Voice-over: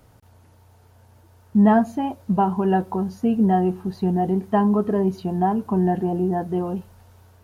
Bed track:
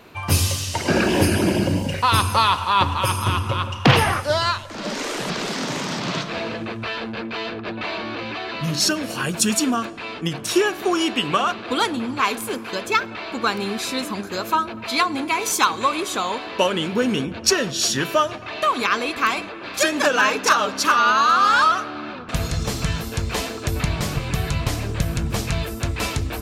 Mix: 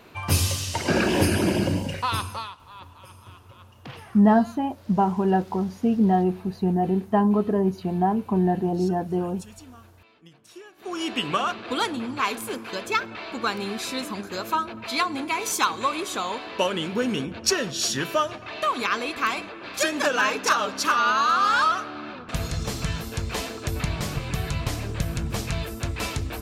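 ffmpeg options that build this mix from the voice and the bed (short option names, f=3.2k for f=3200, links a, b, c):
-filter_complex "[0:a]adelay=2600,volume=-1.5dB[a];[1:a]volume=19dB,afade=t=out:st=1.68:d=0.87:silence=0.0668344,afade=t=in:st=10.76:d=0.41:silence=0.0794328[b];[a][b]amix=inputs=2:normalize=0"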